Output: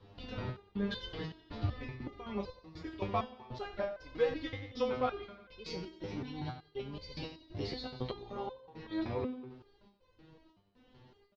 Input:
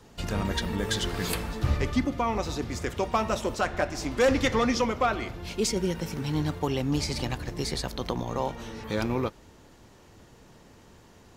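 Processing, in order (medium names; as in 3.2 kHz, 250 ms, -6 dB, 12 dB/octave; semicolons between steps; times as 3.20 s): steep low-pass 4.4 kHz 36 dB/octave; peaking EQ 1.6 kHz -5 dB 1.9 oct; compression, threshold -24 dBFS, peak gain reduction 5.5 dB; trance gate "xxxx..xxxx..xxx." 120 bpm -60 dB; feedback delay 91 ms, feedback 58%, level -13 dB; on a send at -11.5 dB: reverberation, pre-delay 3 ms; on the sum: resonator arpeggio 5.3 Hz 100–510 Hz; trim +6 dB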